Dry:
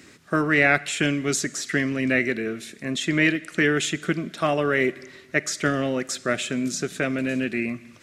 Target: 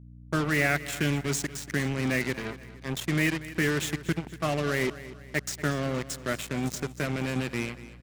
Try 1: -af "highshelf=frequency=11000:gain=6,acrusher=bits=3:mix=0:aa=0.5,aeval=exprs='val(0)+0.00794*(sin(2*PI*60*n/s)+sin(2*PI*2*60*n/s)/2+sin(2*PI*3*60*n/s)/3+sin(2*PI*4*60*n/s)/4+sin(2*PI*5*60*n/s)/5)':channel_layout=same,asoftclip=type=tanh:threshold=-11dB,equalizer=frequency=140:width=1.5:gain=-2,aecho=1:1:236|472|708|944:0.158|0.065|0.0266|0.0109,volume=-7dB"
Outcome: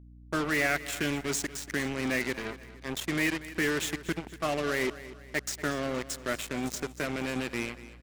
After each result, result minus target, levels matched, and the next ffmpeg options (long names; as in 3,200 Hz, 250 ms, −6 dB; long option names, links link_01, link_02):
soft clipping: distortion +14 dB; 125 Hz band −7.0 dB
-af "highshelf=frequency=11000:gain=6,acrusher=bits=3:mix=0:aa=0.5,aeval=exprs='val(0)+0.00794*(sin(2*PI*60*n/s)+sin(2*PI*2*60*n/s)/2+sin(2*PI*3*60*n/s)/3+sin(2*PI*4*60*n/s)/4+sin(2*PI*5*60*n/s)/5)':channel_layout=same,asoftclip=type=tanh:threshold=-2.5dB,equalizer=frequency=140:width=1.5:gain=-2,aecho=1:1:236|472|708|944:0.158|0.065|0.0266|0.0109,volume=-7dB"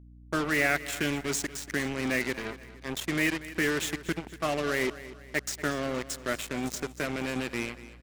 125 Hz band −7.5 dB
-af "highshelf=frequency=11000:gain=6,acrusher=bits=3:mix=0:aa=0.5,aeval=exprs='val(0)+0.00794*(sin(2*PI*60*n/s)+sin(2*PI*2*60*n/s)/2+sin(2*PI*3*60*n/s)/3+sin(2*PI*4*60*n/s)/4+sin(2*PI*5*60*n/s)/5)':channel_layout=same,asoftclip=type=tanh:threshold=-2.5dB,equalizer=frequency=140:width=1.5:gain=7.5,aecho=1:1:236|472|708|944:0.158|0.065|0.0266|0.0109,volume=-7dB"